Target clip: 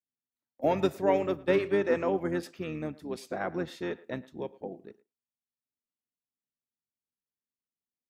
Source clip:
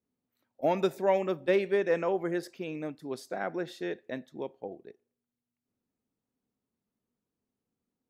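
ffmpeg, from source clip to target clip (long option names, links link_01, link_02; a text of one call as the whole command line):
ffmpeg -i in.wav -filter_complex "[0:a]asplit=3[link_01][link_02][link_03];[link_02]asetrate=22050,aresample=44100,atempo=2,volume=-10dB[link_04];[link_03]asetrate=33038,aresample=44100,atempo=1.33484,volume=-12dB[link_05];[link_01][link_04][link_05]amix=inputs=3:normalize=0,agate=range=-21dB:threshold=-57dB:ratio=16:detection=peak,asplit=2[link_06][link_07];[link_07]adelay=110,highpass=300,lowpass=3400,asoftclip=type=hard:threshold=-20.5dB,volume=-20dB[link_08];[link_06][link_08]amix=inputs=2:normalize=0" out.wav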